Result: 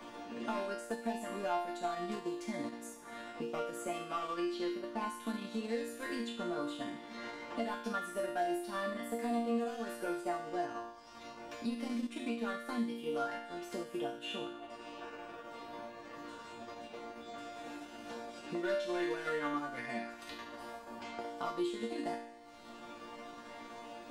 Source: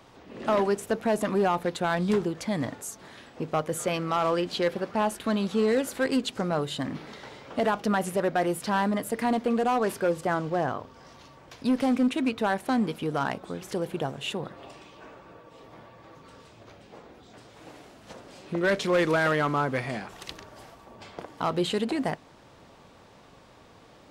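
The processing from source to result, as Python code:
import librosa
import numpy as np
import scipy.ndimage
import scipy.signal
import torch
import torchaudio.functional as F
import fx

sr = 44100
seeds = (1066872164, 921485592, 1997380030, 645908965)

y = fx.resonator_bank(x, sr, root=58, chord='major', decay_s=0.72)
y = fx.transient(y, sr, attack_db=1, sustain_db=-6)
y = fx.band_squash(y, sr, depth_pct=70)
y = y * librosa.db_to_amplitude(12.0)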